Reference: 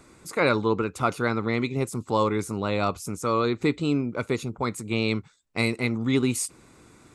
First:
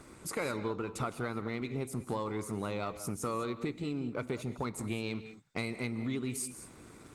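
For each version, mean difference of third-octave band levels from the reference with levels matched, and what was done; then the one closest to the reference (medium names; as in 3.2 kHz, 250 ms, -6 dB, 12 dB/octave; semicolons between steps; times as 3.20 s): 6.0 dB: compression 10:1, threshold -33 dBFS, peak gain reduction 16 dB; waveshaping leveller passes 1; gated-style reverb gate 230 ms rising, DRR 11 dB; trim -2 dB; Opus 32 kbps 48 kHz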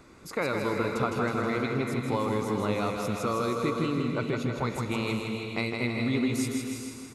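9.0 dB: peaking EQ 8.7 kHz -10 dB 0.69 oct; compression 4:1, threshold -27 dBFS, peak gain reduction 8.5 dB; on a send: feedback delay 159 ms, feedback 59%, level -5 dB; on the sum: gated-style reverb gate 460 ms rising, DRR 5 dB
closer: first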